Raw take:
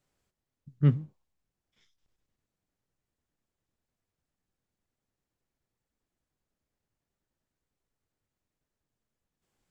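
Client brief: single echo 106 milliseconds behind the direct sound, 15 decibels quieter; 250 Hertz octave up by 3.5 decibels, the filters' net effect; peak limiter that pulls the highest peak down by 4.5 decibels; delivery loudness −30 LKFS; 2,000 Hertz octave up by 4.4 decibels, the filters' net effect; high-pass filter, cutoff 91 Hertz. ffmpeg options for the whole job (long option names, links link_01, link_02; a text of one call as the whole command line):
ffmpeg -i in.wav -af "highpass=91,equalizer=frequency=250:width_type=o:gain=6.5,equalizer=frequency=2000:width_type=o:gain=5,alimiter=limit=-14dB:level=0:latency=1,aecho=1:1:106:0.178,volume=-2dB" out.wav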